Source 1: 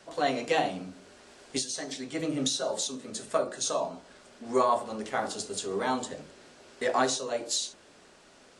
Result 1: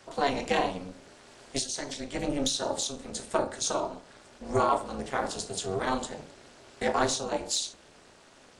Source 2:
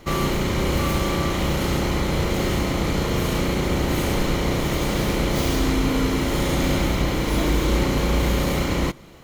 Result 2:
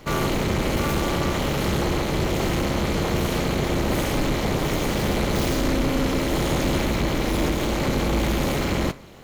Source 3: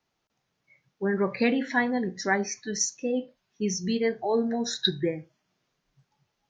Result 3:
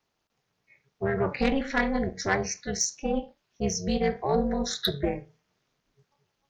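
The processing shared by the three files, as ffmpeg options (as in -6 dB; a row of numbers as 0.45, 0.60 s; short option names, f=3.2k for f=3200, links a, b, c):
-af "aeval=exprs='0.398*(cos(1*acos(clip(val(0)/0.398,-1,1)))-cos(1*PI/2))+0.0562*(cos(5*acos(clip(val(0)/0.398,-1,1)))-cos(5*PI/2))':c=same,flanger=delay=7.2:depth=2.5:regen=-81:speed=0.85:shape=triangular,tremolo=f=280:d=0.947,volume=4.5dB"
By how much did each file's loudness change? 0.0, -1.0, -0.5 LU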